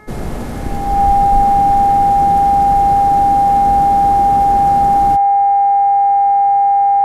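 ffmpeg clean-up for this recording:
-af "bandreject=f=425.4:t=h:w=4,bandreject=f=850.8:t=h:w=4,bandreject=f=1.2762k:t=h:w=4,bandreject=f=1.7016k:t=h:w=4,bandreject=f=2.127k:t=h:w=4,bandreject=f=800:w=30"

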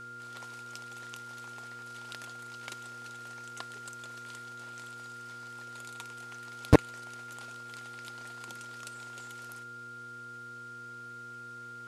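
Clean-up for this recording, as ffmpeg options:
-af "bandreject=f=120.1:t=h:w=4,bandreject=f=240.2:t=h:w=4,bandreject=f=360.3:t=h:w=4,bandreject=f=480.4:t=h:w=4,bandreject=f=1.4k:w=30"

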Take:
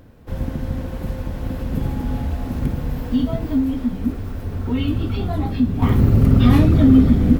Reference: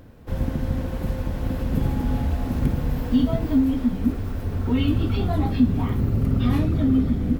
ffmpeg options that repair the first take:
-af "asetnsamples=n=441:p=0,asendcmd='5.82 volume volume -8dB',volume=0dB"

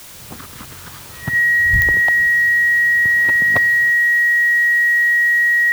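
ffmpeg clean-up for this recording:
-af "adeclick=t=4,bandreject=f=1.9k:w=30,afwtdn=0.013"

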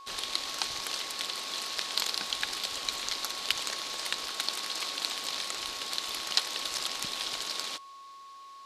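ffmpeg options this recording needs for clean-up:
-af "bandreject=f=1.1k:w=30"

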